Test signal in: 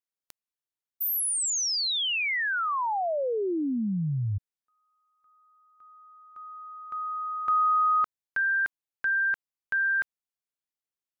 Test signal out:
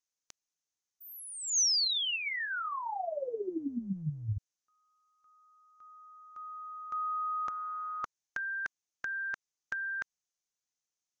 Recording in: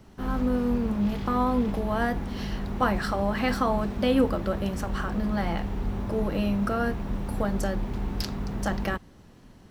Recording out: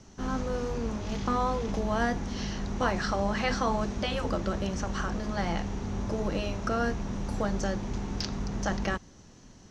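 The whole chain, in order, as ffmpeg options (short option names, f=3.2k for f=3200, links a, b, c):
-filter_complex "[0:a]afftfilt=real='re*lt(hypot(re,im),0.501)':imag='im*lt(hypot(re,im),0.501)':win_size=1024:overlap=0.75,lowpass=f=6.3k:t=q:w=5.7,acrossover=split=4600[a][b];[b]acompressor=threshold=-44dB:ratio=4:attack=1:release=60[c];[a][c]amix=inputs=2:normalize=0,volume=-1.5dB"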